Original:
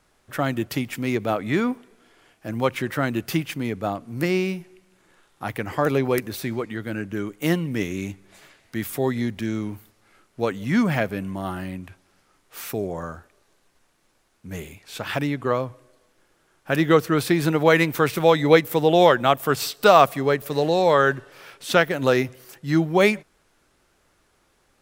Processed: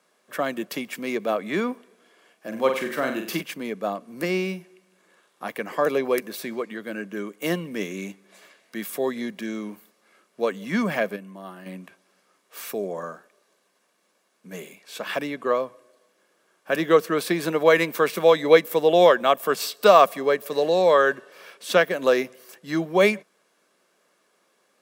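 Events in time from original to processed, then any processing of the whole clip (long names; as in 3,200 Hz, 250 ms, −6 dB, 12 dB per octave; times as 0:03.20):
0:02.47–0:03.41: flutter between parallel walls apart 7.8 metres, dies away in 0.46 s
0:11.16–0:11.66: clip gain −8 dB
whole clip: Chebyshev high-pass filter 190 Hz, order 4; comb filter 1.8 ms, depth 36%; level −1 dB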